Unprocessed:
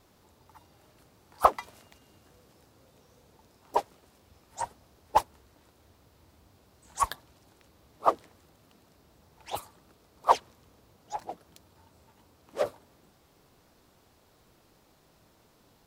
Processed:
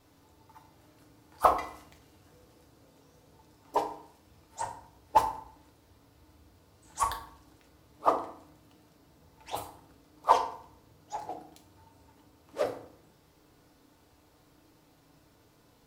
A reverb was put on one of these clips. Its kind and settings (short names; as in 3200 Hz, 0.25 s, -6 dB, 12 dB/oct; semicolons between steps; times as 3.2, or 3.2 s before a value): FDN reverb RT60 0.58 s, low-frequency decay 1.5×, high-frequency decay 0.7×, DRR 1.5 dB; gain -3 dB